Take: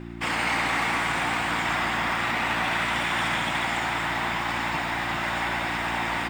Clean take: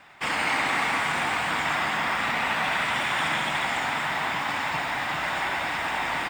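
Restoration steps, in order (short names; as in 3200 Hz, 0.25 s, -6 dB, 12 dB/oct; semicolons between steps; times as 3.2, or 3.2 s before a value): clip repair -18.5 dBFS; de-hum 57.9 Hz, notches 6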